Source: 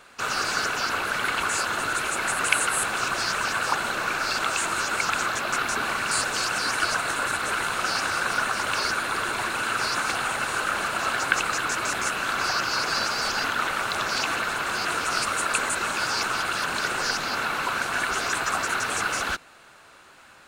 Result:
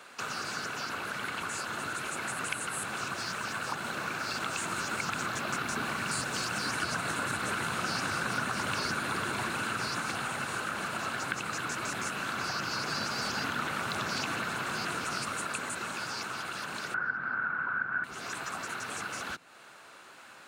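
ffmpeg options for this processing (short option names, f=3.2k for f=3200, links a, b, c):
-filter_complex "[0:a]asettb=1/sr,asplit=3[a][b][c];[a]atrim=end=3.144[d];[b]atrim=start=3.14:end=6.69,asetpts=PTS-STARTPTS,afade=t=in:d=0.004:c=qsin,afade=t=out:st=3.546:d=0.004:c=qsin,aeval=exprs='sgn(val(0))*max(abs(val(0))-0.00473,0)':c=same[e];[c]atrim=start=6.686[f];[d][e]acrossfade=d=0.004:c1=hsin:c2=qsin[g];[g][f]acrossfade=d=0.004:c1=qsin:c2=hsin,asettb=1/sr,asplit=3[h][i][j];[h]atrim=end=16.944[k];[i]atrim=start=16.94:end=18.04,asetpts=PTS-STARTPTS,afade=t=in:d=0.004:c=qsin,afade=t=out:st=1.096:d=0.004:c=qsin,lowpass=f=1.5k:t=q:w=10[l];[j]atrim=start=18.036[m];[k][l]acrossfade=d=0.004:c1=hsin:c2=qsin[n];[n][m]acrossfade=d=0.004:c1=qsin:c2=hsin,dynaudnorm=f=380:g=9:m=11.5dB,highpass=140,acrossover=split=220[o][p];[p]acompressor=threshold=-39dB:ratio=2.5[q];[o][q]amix=inputs=2:normalize=0"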